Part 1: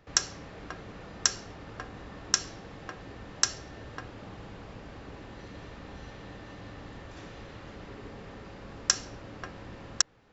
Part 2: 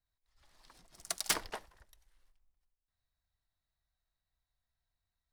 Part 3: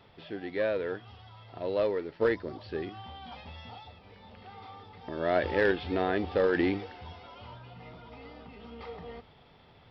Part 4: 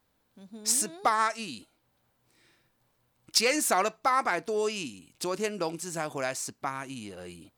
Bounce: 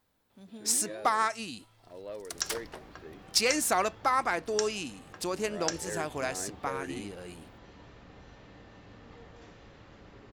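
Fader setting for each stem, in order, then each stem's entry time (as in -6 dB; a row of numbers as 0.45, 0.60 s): -8.0, -4.5, -13.5, -1.5 dB; 2.25, 1.20, 0.30, 0.00 s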